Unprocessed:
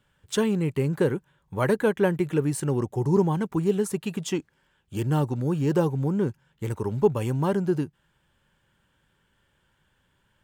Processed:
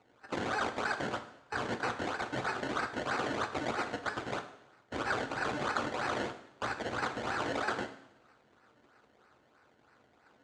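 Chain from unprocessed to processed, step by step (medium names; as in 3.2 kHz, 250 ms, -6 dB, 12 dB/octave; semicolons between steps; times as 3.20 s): bit-reversed sample order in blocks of 256 samples; peaking EQ 2 kHz -13 dB 1.1 oct; in parallel at 0 dB: peak limiter -18 dBFS, peak gain reduction 9 dB; on the sum: compression 8:1, threshold -29 dBFS, peak gain reduction 17 dB; one-sided clip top -31.5 dBFS; decimation with a swept rate 25×, swing 100% 3.1 Hz; integer overflow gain 25 dB; cabinet simulation 140–6800 Hz, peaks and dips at 180 Hz -6 dB, 1.4 kHz +8 dB, 5.4 kHz -6 dB; two-slope reverb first 0.71 s, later 2.9 s, from -27 dB, DRR 6 dB; trim -1.5 dB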